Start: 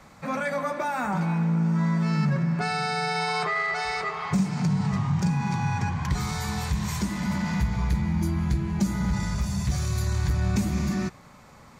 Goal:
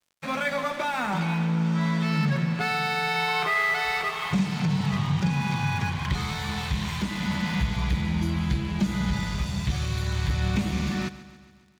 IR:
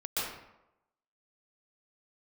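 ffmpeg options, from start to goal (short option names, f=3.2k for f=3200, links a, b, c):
-filter_complex "[0:a]acrossover=split=2800[a][b];[b]acompressor=threshold=-46dB:ratio=4:attack=1:release=60[c];[a][c]amix=inputs=2:normalize=0,equalizer=f=3.3k:t=o:w=1.1:g=14.5,aeval=exprs='sgn(val(0))*max(abs(val(0))-0.00944,0)':c=same,asplit=2[d][e];[e]aecho=0:1:140|280|420|560|700|840:0.158|0.0935|0.0552|0.0326|0.0192|0.0113[f];[d][f]amix=inputs=2:normalize=0"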